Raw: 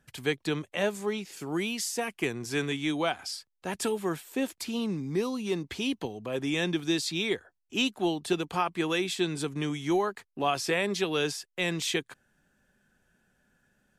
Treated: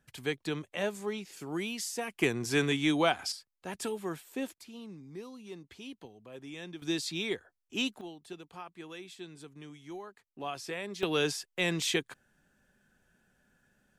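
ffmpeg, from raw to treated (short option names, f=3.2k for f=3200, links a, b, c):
-af "asetnsamples=n=441:p=0,asendcmd='2.19 volume volume 2dB;3.32 volume volume -6dB;4.54 volume volume -15dB;6.82 volume volume -4.5dB;8.01 volume volume -17dB;10.27 volume volume -10.5dB;11.03 volume volume -0.5dB',volume=-4.5dB"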